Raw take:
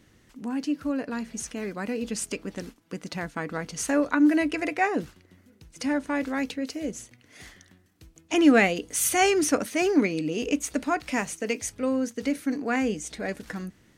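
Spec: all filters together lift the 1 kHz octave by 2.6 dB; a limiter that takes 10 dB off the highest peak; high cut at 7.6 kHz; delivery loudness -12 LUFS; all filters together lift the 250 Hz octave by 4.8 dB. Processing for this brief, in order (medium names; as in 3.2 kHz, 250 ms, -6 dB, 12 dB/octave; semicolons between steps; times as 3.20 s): low-pass 7.6 kHz; peaking EQ 250 Hz +5.5 dB; peaking EQ 1 kHz +3.5 dB; trim +13.5 dB; peak limiter 0 dBFS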